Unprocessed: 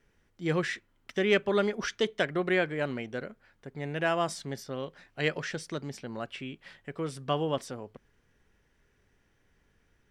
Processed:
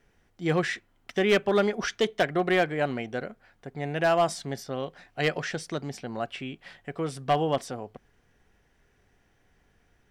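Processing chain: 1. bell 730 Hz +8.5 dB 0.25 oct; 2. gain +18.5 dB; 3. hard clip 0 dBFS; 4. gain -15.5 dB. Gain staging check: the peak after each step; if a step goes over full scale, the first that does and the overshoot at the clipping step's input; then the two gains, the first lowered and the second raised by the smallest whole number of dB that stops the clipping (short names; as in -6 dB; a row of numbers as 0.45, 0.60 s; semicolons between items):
-11.5, +7.0, 0.0, -15.5 dBFS; step 2, 7.0 dB; step 2 +11.5 dB, step 4 -8.5 dB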